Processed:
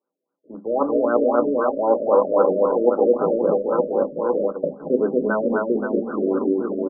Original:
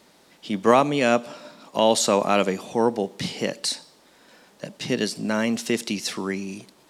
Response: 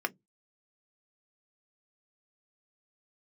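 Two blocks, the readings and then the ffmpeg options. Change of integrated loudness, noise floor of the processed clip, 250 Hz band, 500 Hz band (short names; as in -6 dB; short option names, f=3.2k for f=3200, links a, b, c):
+3.0 dB, -82 dBFS, +2.5 dB, +6.5 dB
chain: -filter_complex "[0:a]agate=range=-27dB:threshold=-48dB:ratio=16:detection=peak,aecho=1:1:230|529|917.7|1423|2080:0.631|0.398|0.251|0.158|0.1,areverse,acompressor=threshold=-34dB:ratio=4,areverse[a];[1:a]atrim=start_sample=2205,asetrate=61740,aresample=44100[b];[a][b]afir=irnorm=-1:irlink=0,dynaudnorm=f=160:g=9:m=12dB,asplit=2[c][d];[d]aeval=exprs='sgn(val(0))*max(abs(val(0))-0.0188,0)':c=same,volume=-5dB[e];[c][e]amix=inputs=2:normalize=0,afftfilt=real='re*lt(b*sr/1024,610*pow(1600/610,0.5+0.5*sin(2*PI*3.8*pts/sr)))':imag='im*lt(b*sr/1024,610*pow(1600/610,0.5+0.5*sin(2*PI*3.8*pts/sr)))':win_size=1024:overlap=0.75"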